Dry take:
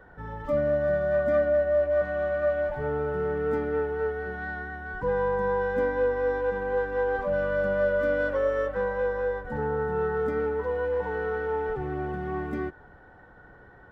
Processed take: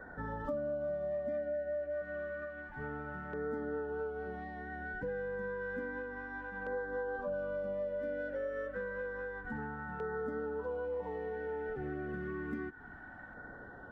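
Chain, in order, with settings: fifteen-band EQ 250 Hz +10 dB, 630 Hz +6 dB, 1600 Hz +9 dB; compressor 5:1, threshold -33 dBFS, peak gain reduction 17.5 dB; LFO notch saw down 0.3 Hz 410–2900 Hz; gain -3 dB

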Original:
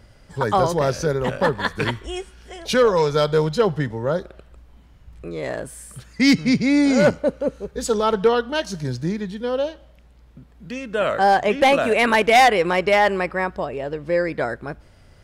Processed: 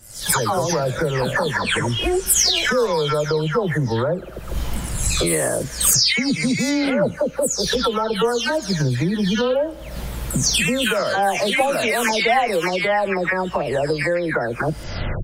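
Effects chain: spectral delay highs early, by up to 0.395 s; recorder AGC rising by 61 dB/s; high shelf 5700 Hz +11.5 dB; gain -3 dB

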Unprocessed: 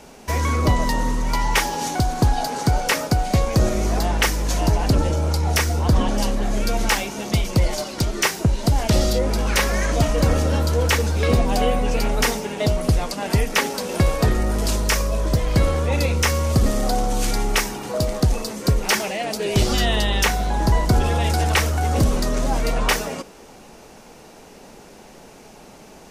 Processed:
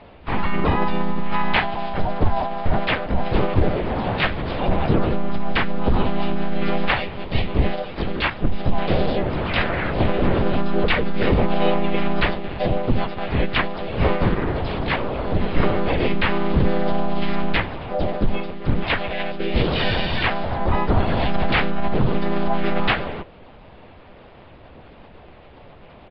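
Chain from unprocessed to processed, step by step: notches 50/100/150/200 Hz; monotone LPC vocoder at 8 kHz 200 Hz; harmoniser -3 st -2 dB, +4 st -5 dB; gain -2.5 dB

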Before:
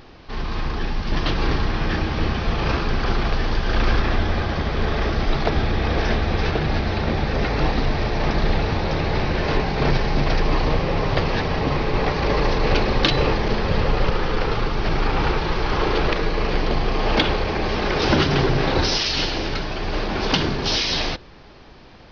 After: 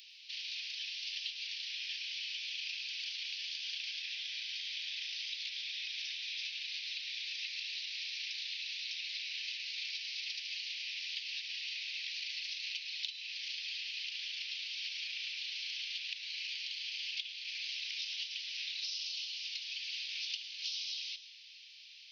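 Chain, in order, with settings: steep high-pass 2500 Hz 48 dB/oct; compressor 12:1, threshold -39 dBFS, peak gain reduction 22.5 dB; plate-style reverb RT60 0.68 s, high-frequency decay 0.95×, pre-delay 95 ms, DRR 11.5 dB; gain +1.5 dB

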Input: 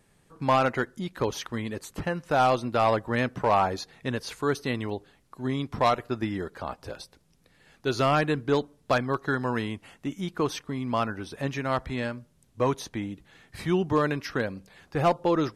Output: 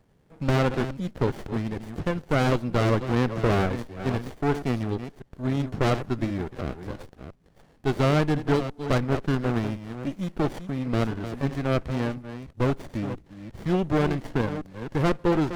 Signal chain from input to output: reverse delay 0.348 s, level -10.5 dB; running maximum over 33 samples; gain +2 dB

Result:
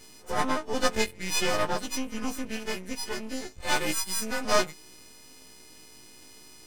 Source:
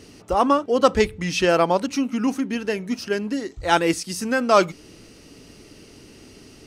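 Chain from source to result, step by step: frequency quantiser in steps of 3 st; half-wave rectifier; pre-echo 68 ms -22 dB; gain -5.5 dB

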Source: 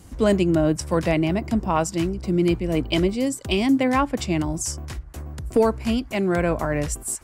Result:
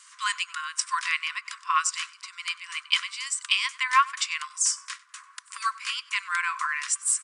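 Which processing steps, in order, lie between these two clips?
on a send: feedback echo 96 ms, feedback 23%, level -22 dB; on the sum: FFT band-pass 1000–10000 Hz; gain +4.5 dB

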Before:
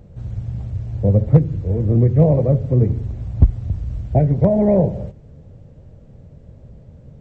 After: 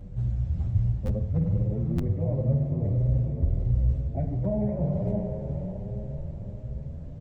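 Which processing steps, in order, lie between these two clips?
notches 50/100/150 Hz; spring tank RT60 1.6 s, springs 49 ms, chirp 45 ms, DRR 7.5 dB; reverse; compressor 6:1, threshold -27 dBFS, peak gain reduction 19 dB; reverse; low shelf 180 Hz +9 dB; notch 460 Hz, Q 12; diffused feedback echo 0.502 s, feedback 50%, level -5 dB; stuck buffer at 1.05/1.95, samples 512, times 2; endless flanger 8.2 ms +1.4 Hz

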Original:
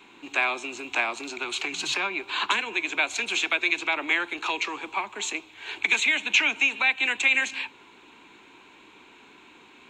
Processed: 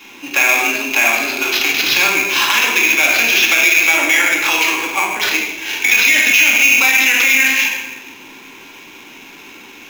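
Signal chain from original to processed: bell 1300 Hz -4.5 dB 0.76 oct; shoebox room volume 920 m³, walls mixed, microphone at 2.3 m; limiter -14.5 dBFS, peak gain reduction 10.5 dB; sample-rate reducer 9000 Hz, jitter 0%; bell 2600 Hz +6.5 dB 2.1 oct; gain +6.5 dB

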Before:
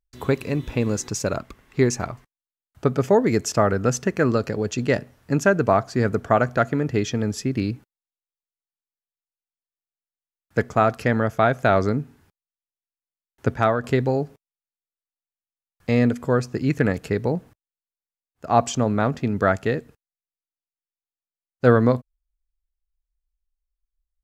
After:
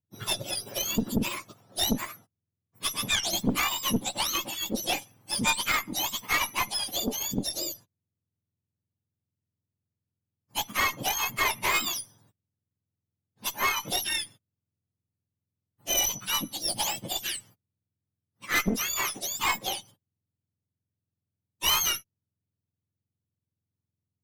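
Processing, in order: spectrum mirrored in octaves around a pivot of 1200 Hz; added harmonics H 4 -12 dB, 5 -16 dB, 8 -28 dB, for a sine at -7 dBFS; gain -7.5 dB

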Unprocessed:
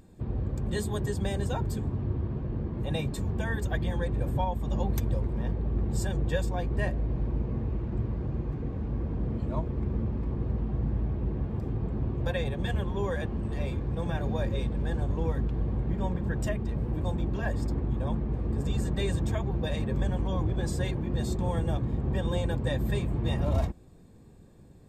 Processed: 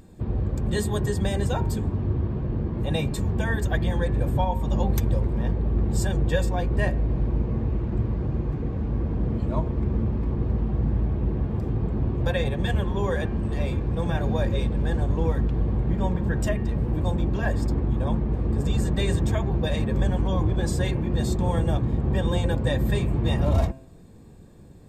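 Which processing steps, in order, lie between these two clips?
de-hum 132.5 Hz, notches 21; gain +5.5 dB

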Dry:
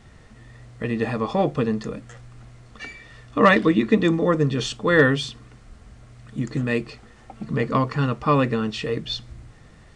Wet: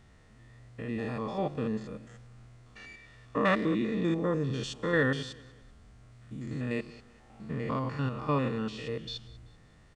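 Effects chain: stepped spectrum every 0.1 s; feedback echo 0.192 s, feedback 37%, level -21 dB; gain -8 dB

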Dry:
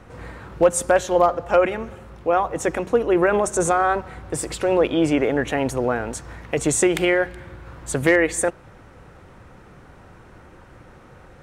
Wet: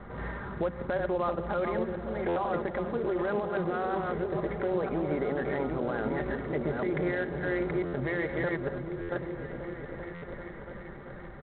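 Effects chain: reverse delay 0.489 s, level -8 dB; steep low-pass 2200 Hz 96 dB/oct; comb 5 ms, depth 45%; compressor 6:1, threshold -22 dBFS, peak gain reduction 11 dB; limiter -19.5 dBFS, peak gain reduction 9 dB; vocal rider within 4 dB 2 s; repeats that get brighter 0.389 s, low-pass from 200 Hz, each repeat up 1 oct, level -3 dB; stuck buffer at 2.28/7.85/9.01/10.14, samples 512, times 6; gain -2.5 dB; IMA ADPCM 32 kbps 8000 Hz

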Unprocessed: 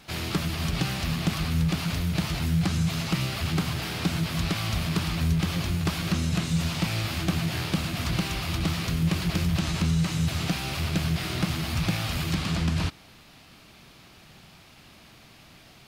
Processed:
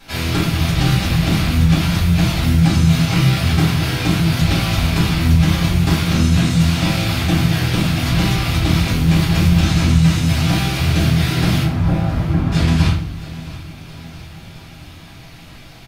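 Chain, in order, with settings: 11.63–12.52 LPF 1100 Hz 12 dB/oct; feedback echo 0.671 s, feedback 58%, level -17.5 dB; shoebox room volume 64 m³, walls mixed, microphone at 2.1 m

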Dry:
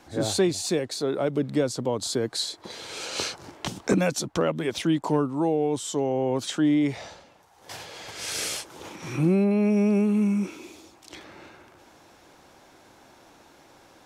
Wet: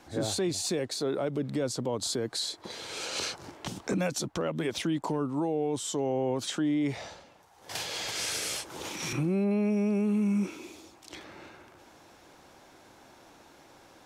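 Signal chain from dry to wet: limiter -20 dBFS, peak gain reduction 8 dB; 7.75–9.13 three-band squash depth 100%; gain -1.5 dB

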